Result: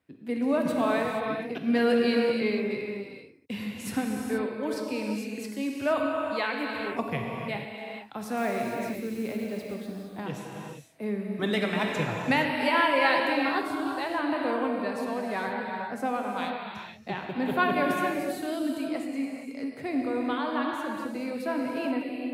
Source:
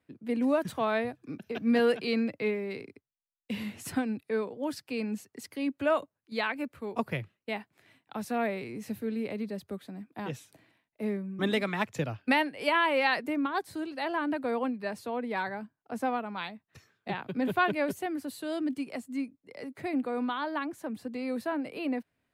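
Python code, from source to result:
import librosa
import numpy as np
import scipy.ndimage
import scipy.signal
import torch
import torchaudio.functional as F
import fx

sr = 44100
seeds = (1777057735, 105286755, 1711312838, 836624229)

y = fx.block_float(x, sr, bits=5, at=(8.37, 9.74))
y = fx.rev_gated(y, sr, seeds[0], gate_ms=500, shape='flat', drr_db=-0.5)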